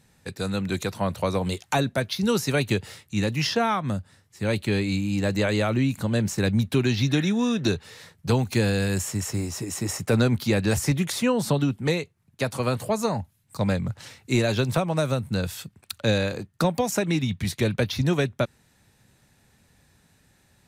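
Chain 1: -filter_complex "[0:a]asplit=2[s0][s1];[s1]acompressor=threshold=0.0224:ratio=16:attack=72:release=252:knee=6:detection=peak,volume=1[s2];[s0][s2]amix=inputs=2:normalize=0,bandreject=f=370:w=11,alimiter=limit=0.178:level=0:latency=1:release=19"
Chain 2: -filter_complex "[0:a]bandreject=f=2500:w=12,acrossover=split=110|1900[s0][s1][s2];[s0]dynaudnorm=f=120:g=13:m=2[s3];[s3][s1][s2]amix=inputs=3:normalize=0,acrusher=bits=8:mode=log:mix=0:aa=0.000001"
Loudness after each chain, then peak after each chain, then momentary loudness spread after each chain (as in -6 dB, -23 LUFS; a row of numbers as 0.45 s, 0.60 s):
-25.0 LUFS, -24.0 LUFS; -15.0 dBFS, -8.0 dBFS; 7 LU, 8 LU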